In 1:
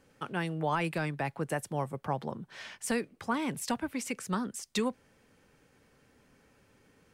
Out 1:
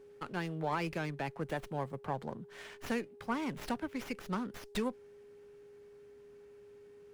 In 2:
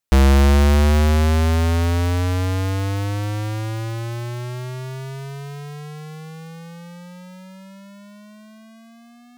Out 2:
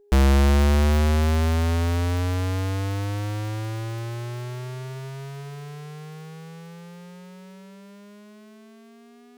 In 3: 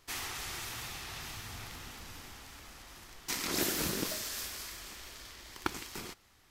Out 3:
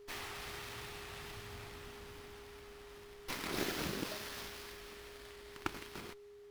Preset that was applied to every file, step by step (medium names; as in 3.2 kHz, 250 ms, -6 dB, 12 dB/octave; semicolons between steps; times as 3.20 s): whistle 410 Hz -49 dBFS; sliding maximum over 5 samples; trim -4 dB